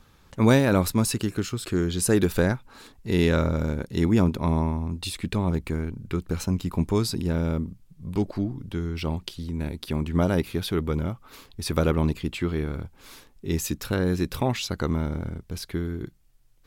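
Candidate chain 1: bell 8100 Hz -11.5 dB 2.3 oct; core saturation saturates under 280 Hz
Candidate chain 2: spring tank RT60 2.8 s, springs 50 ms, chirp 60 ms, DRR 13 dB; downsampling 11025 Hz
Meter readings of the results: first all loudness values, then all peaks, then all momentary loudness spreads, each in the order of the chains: -27.5, -26.0 LUFS; -7.5, -6.5 dBFS; 11, 12 LU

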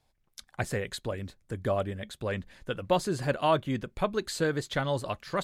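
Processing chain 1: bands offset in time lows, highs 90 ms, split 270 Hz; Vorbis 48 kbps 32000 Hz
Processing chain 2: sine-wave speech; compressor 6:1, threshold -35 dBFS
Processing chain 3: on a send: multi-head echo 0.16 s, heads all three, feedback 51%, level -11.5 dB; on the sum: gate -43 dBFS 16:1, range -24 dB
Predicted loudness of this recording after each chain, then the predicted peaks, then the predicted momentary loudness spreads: -32.0, -40.5, -30.0 LUFS; -12.5, -25.0, -12.5 dBFS; 11, 5, 9 LU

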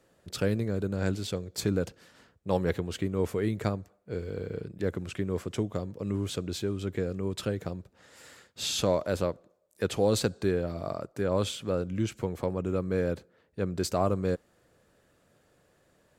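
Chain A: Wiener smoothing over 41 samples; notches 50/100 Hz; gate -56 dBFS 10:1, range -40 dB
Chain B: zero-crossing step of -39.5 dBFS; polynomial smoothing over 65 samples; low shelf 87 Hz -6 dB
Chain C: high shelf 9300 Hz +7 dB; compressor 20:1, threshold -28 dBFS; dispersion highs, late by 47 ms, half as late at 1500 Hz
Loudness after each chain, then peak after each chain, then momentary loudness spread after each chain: -32.5, -31.5, -35.5 LUFS; -12.0, -13.5, -18.0 dBFS; 10, 20, 7 LU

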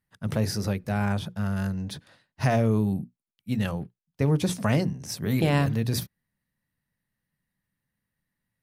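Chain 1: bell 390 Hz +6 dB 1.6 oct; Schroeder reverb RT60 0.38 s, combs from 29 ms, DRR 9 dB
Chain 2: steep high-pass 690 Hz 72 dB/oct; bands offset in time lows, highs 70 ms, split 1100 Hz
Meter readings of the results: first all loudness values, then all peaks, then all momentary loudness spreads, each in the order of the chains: -24.0, -36.5 LUFS; -6.0, -17.0 dBFS; 13, 13 LU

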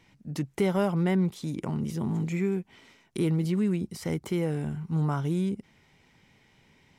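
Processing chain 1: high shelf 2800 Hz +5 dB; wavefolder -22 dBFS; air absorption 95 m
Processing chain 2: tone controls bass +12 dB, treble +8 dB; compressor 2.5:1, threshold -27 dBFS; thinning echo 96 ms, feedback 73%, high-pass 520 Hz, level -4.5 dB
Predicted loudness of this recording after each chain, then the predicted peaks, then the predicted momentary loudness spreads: -30.5, -27.5 LUFS; -22.0, -16.0 dBFS; 8, 7 LU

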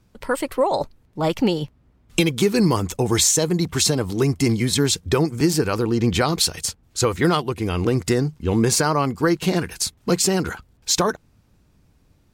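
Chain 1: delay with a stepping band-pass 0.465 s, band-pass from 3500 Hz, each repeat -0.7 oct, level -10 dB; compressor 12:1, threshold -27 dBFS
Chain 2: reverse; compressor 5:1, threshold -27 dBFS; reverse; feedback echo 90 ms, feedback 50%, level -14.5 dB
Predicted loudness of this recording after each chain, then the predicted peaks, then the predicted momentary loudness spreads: -32.0, -30.5 LUFS; -9.5, -15.0 dBFS; 6, 5 LU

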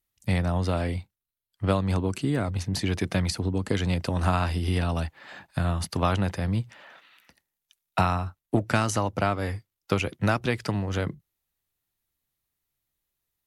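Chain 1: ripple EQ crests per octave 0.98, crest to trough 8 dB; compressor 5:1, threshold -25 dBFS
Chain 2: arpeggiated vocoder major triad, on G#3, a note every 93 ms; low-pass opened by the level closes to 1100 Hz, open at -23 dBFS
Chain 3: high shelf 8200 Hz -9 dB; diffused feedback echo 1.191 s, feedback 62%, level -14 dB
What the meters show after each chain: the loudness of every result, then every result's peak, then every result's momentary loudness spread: -31.5, -29.5, -27.5 LUFS; -12.5, -11.5, -10.5 dBFS; 7, 10, 15 LU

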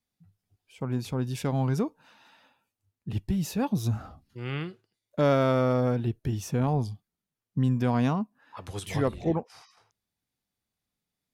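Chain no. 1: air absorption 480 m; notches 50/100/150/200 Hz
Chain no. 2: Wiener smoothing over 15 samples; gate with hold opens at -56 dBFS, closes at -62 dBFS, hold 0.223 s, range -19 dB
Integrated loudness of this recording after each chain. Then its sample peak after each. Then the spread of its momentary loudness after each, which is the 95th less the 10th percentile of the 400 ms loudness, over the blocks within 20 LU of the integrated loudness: -29.5, -28.5 LUFS; -14.5, -13.0 dBFS; 15, 15 LU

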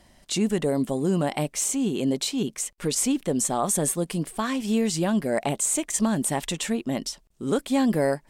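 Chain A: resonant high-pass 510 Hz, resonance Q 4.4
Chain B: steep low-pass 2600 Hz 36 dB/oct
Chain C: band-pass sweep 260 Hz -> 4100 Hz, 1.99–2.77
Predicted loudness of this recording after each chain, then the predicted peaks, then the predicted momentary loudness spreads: -22.5, -27.0, -34.0 LUFS; -5.5, -11.5, -18.0 dBFS; 8, 8, 16 LU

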